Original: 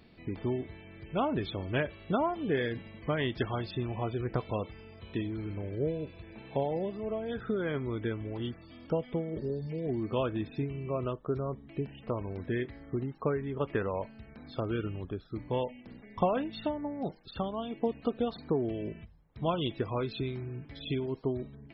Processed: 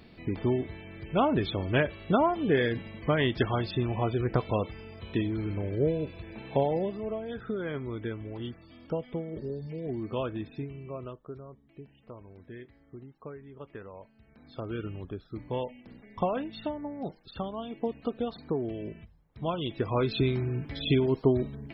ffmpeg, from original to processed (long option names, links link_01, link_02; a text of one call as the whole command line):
ffmpeg -i in.wav -af "volume=26dB,afade=type=out:start_time=6.61:duration=0.67:silence=0.473151,afade=type=out:start_time=10.29:duration=1.19:silence=0.281838,afade=type=in:start_time=14.14:duration=0.77:silence=0.266073,afade=type=in:start_time=19.66:duration=0.58:silence=0.334965" out.wav